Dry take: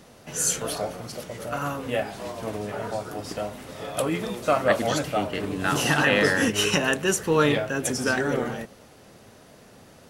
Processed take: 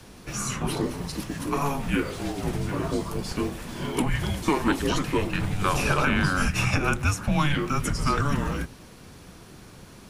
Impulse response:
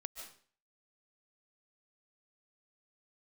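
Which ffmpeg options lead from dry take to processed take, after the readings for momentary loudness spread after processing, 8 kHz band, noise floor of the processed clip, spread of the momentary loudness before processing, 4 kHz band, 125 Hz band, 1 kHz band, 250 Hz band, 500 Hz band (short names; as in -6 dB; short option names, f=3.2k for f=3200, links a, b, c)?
8 LU, -6.0 dB, -47 dBFS, 13 LU, -4.0 dB, +5.5 dB, +0.5 dB, +1.5 dB, -6.0 dB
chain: -filter_complex "[0:a]afreqshift=-290,acrossover=split=1300|2600[a][b][c];[a]acompressor=threshold=-25dB:ratio=4[d];[b]acompressor=threshold=-35dB:ratio=4[e];[c]acompressor=threshold=-39dB:ratio=4[f];[d][e][f]amix=inputs=3:normalize=0,volume=4dB"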